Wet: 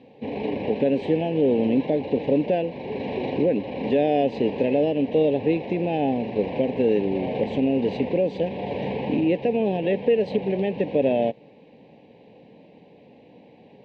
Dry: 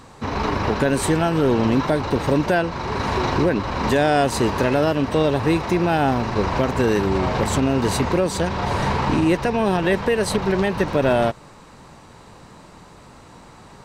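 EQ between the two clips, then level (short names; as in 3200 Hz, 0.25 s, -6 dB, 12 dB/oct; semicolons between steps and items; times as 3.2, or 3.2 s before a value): Butterworth band-stop 1300 Hz, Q 0.66; speaker cabinet 340–2200 Hz, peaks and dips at 360 Hz -10 dB, 650 Hz -8 dB, 940 Hz -7 dB, 1400 Hz -8 dB, 2000 Hz -6 dB; +6.5 dB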